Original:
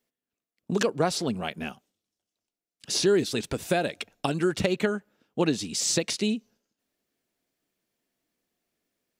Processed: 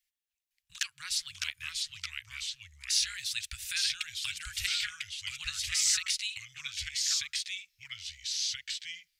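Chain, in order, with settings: ever faster or slower copies 507 ms, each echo -2 st, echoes 2; inverse Chebyshev band-stop 210–620 Hz, stop band 70 dB

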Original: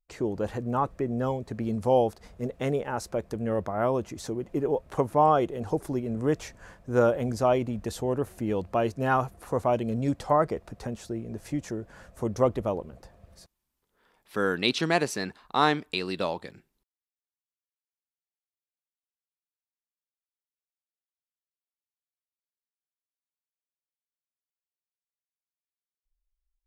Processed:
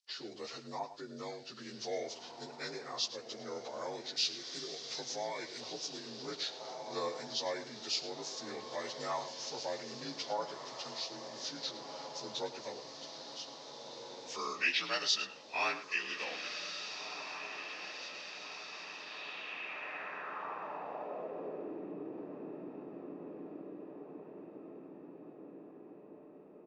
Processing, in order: frequency axis rescaled in octaves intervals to 85%; on a send: echo that smears into a reverb 1692 ms, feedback 55%, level -10 dB; on the sum: band-pass sweep 5 kHz -> 320 Hz, 18.97–21.83 s; in parallel at 0 dB: compression, threshold -59 dBFS, peak gain reduction 19.5 dB; 4.16–5.61 s: on the sum: FFT filter 160 Hz 0 dB, 950 Hz -6 dB, 2 kHz +4 dB; echo from a far wall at 18 m, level -13 dB; trim +10.5 dB

